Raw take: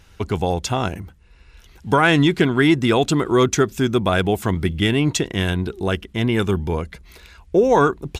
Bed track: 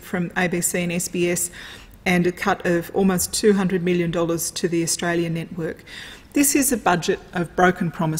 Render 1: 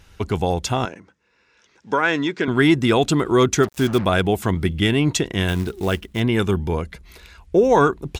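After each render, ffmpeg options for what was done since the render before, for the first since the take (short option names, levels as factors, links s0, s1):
-filter_complex "[0:a]asettb=1/sr,asplit=3[s0][s1][s2];[s0]atrim=end=0.854[s3];[s1]atrim=start=0.85:end=2.48,asetpts=PTS-STARTPTS,afade=t=in:d=0.004:c=qsin,afade=t=out:st=1.626:d=0.004:c=qsin,highpass=340,equalizer=f=360:t=q:w=4:g=-4,equalizer=f=730:t=q:w=4:g=-9,equalizer=f=1200:t=q:w=4:g=-4,equalizer=f=2100:t=q:w=4:g=-3,equalizer=f=3000:t=q:w=4:g=-8,equalizer=f=4200:t=q:w=4:g=-7,lowpass=f=6300:w=0.5412,lowpass=f=6300:w=1.3066[s4];[s2]atrim=start=2.476[s5];[s3][s4]acrossfade=d=0.004:c1=hsin:c2=qsin[s6];[s6][s5]acrossfade=d=0.004:c1=qsin:c2=hsin,asplit=3[s7][s8][s9];[s7]afade=t=out:st=3.62:d=0.02[s10];[s8]acrusher=bits=4:mix=0:aa=0.5,afade=t=in:st=3.62:d=0.02,afade=t=out:st=4.04:d=0.02[s11];[s9]afade=t=in:st=4.04:d=0.02[s12];[s10][s11][s12]amix=inputs=3:normalize=0,asettb=1/sr,asplit=3[s13][s14][s15];[s13]atrim=end=5.484[s16];[s14]atrim=start=5.48:end=6.2,asetpts=PTS-STARTPTS,afade=t=in:d=0.004:c=qsin,afade=t=out:st=0.716:d=0.004:c=qsin,acrusher=bits=5:mode=log:mix=0:aa=0.000001[s17];[s15]atrim=start=6.196[s18];[s16][s17]acrossfade=d=0.004:c1=hsin:c2=qsin[s19];[s19][s18]acrossfade=d=0.004:c1=qsin:c2=hsin"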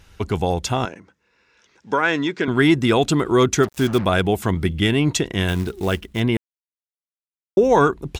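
-filter_complex "[0:a]asplit=3[s0][s1][s2];[s0]atrim=end=6.37,asetpts=PTS-STARTPTS,afade=t=out:st=6.366:d=0.004:c=hsin[s3];[s1]atrim=start=6.37:end=7.57,asetpts=PTS-STARTPTS,volume=0[s4];[s2]atrim=start=7.57,asetpts=PTS-STARTPTS,afade=t=in:d=0.004:c=hsin[s5];[s3][s4][s5]concat=n=3:v=0:a=1"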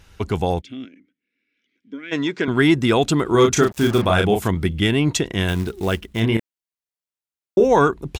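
-filter_complex "[0:a]asplit=3[s0][s1][s2];[s0]afade=t=out:st=0.6:d=0.02[s3];[s1]asplit=3[s4][s5][s6];[s4]bandpass=f=270:t=q:w=8,volume=1[s7];[s5]bandpass=f=2290:t=q:w=8,volume=0.501[s8];[s6]bandpass=f=3010:t=q:w=8,volume=0.355[s9];[s7][s8][s9]amix=inputs=3:normalize=0,afade=t=in:st=0.6:d=0.02,afade=t=out:st=2.11:d=0.02[s10];[s2]afade=t=in:st=2.11:d=0.02[s11];[s3][s10][s11]amix=inputs=3:normalize=0,asettb=1/sr,asplit=3[s12][s13][s14];[s12]atrim=end=3.294[s15];[s13]atrim=start=3.29:end=4.48,asetpts=PTS-STARTPTS,afade=t=in:d=0.004:c=qsin,afade=t=out:st=1.186:d=0.004:c=qsin,asplit=2[s16][s17];[s17]adelay=34,volume=0.631[s18];[s16][s18]amix=inputs=2:normalize=0,atrim=end_sample=52479[s19];[s14]atrim=start=4.476[s20];[s15][s19]acrossfade=d=0.004:c1=hsin:c2=qsin[s21];[s21][s20]acrossfade=d=0.004:c1=qsin:c2=hsin,asplit=3[s22][s23][s24];[s22]afade=t=out:st=6.21:d=0.02[s25];[s23]asplit=2[s26][s27];[s27]adelay=27,volume=0.562[s28];[s26][s28]amix=inputs=2:normalize=0,afade=t=in:st=6.21:d=0.02,afade=t=out:st=7.64:d=0.02[s29];[s24]afade=t=in:st=7.64:d=0.02[s30];[s25][s29][s30]amix=inputs=3:normalize=0"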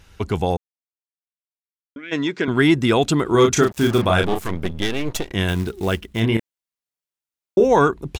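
-filter_complex "[0:a]asettb=1/sr,asplit=3[s0][s1][s2];[s0]atrim=end=4.234[s3];[s1]atrim=start=4.23:end=5.32,asetpts=PTS-STARTPTS,afade=t=in:d=0.004:c=qsin,afade=t=out:st=1.086:d=0.004:c=qsin,aeval=exprs='max(val(0),0)':c=same[s4];[s2]atrim=start=5.316[s5];[s3][s4]acrossfade=d=0.004:c1=hsin:c2=qsin[s6];[s6][s5]acrossfade=d=0.004:c1=qsin:c2=hsin,asplit=3[s7][s8][s9];[s7]atrim=end=0.57,asetpts=PTS-STARTPTS,afade=t=out:st=0.566:d=0.004:c=hsin[s10];[s8]atrim=start=0.57:end=1.96,asetpts=PTS-STARTPTS,volume=0[s11];[s9]atrim=start=1.96,asetpts=PTS-STARTPTS,afade=t=in:d=0.004:c=hsin[s12];[s10][s11][s12]concat=n=3:v=0:a=1"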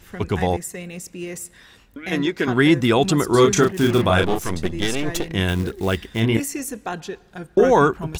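-filter_complex "[1:a]volume=0.299[s0];[0:a][s0]amix=inputs=2:normalize=0"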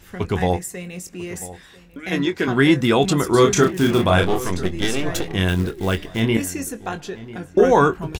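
-filter_complex "[0:a]asplit=2[s0][s1];[s1]adelay=22,volume=0.299[s2];[s0][s2]amix=inputs=2:normalize=0,asplit=2[s3][s4];[s4]adelay=994,lowpass=f=2100:p=1,volume=0.141,asplit=2[s5][s6];[s6]adelay=994,lowpass=f=2100:p=1,volume=0.29,asplit=2[s7][s8];[s8]adelay=994,lowpass=f=2100:p=1,volume=0.29[s9];[s3][s5][s7][s9]amix=inputs=4:normalize=0"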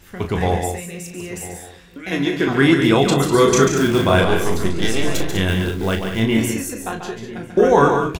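-filter_complex "[0:a]asplit=2[s0][s1];[s1]adelay=36,volume=0.398[s2];[s0][s2]amix=inputs=2:normalize=0,asplit=2[s3][s4];[s4]aecho=0:1:139.9|198.3:0.447|0.355[s5];[s3][s5]amix=inputs=2:normalize=0"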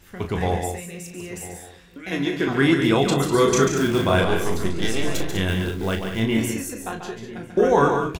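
-af "volume=0.631"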